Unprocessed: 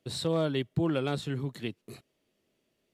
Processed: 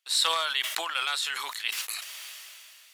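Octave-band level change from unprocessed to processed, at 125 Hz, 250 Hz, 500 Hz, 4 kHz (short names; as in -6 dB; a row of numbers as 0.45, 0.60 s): under -40 dB, -27.0 dB, -10.5 dB, +13.5 dB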